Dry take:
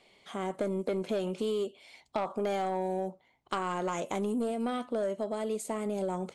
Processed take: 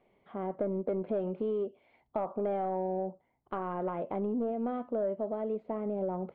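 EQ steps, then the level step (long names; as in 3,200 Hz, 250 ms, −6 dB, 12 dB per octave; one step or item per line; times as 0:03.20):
dynamic equaliser 630 Hz, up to +4 dB, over −43 dBFS, Q 1.3
high-frequency loss of the air 380 metres
head-to-tape spacing loss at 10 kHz 40 dB
0.0 dB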